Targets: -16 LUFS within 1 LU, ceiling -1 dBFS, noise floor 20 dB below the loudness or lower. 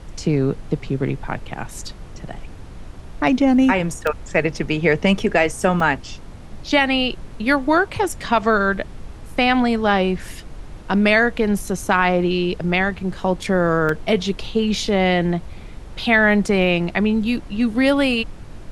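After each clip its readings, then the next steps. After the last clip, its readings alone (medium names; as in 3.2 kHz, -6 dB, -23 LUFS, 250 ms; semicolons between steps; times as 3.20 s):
dropouts 3; longest dropout 2.8 ms; noise floor -37 dBFS; noise floor target -39 dBFS; loudness -19.0 LUFS; peak level -2.5 dBFS; loudness target -16.0 LUFS
-> interpolate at 4.07/5.80/13.89 s, 2.8 ms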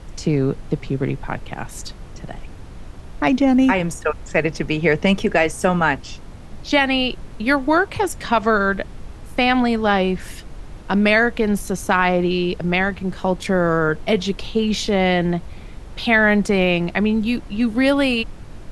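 dropouts 0; noise floor -37 dBFS; noise floor target -39 dBFS
-> noise print and reduce 6 dB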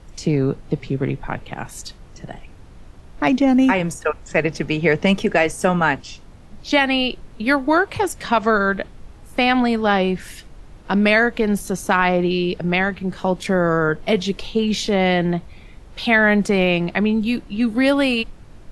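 noise floor -43 dBFS; loudness -19.0 LUFS; peak level -2.5 dBFS; loudness target -16.0 LUFS
-> trim +3 dB; peak limiter -1 dBFS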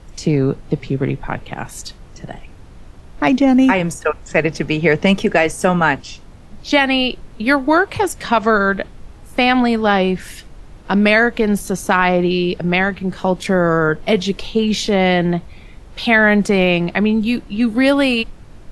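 loudness -16.5 LUFS; peak level -1.0 dBFS; noise floor -40 dBFS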